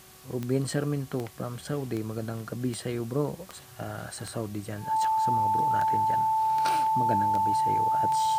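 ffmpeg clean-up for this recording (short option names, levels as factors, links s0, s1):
-af "adeclick=t=4,bandreject=f=374.1:t=h:w=4,bandreject=f=748.2:t=h:w=4,bandreject=f=1122.3:t=h:w=4,bandreject=f=880:w=30,afwtdn=0.0025"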